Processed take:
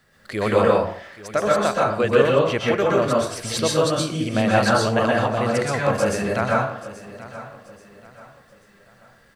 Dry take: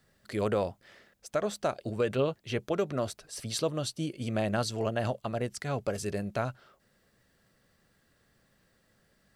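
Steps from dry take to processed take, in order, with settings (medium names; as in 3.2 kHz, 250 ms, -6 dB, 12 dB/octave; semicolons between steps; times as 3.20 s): peaking EQ 1.6 kHz +6.5 dB 2.5 oct; feedback delay 832 ms, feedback 37%, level -16 dB; plate-style reverb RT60 0.55 s, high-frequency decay 0.55×, pre-delay 110 ms, DRR -4 dB; trim +4 dB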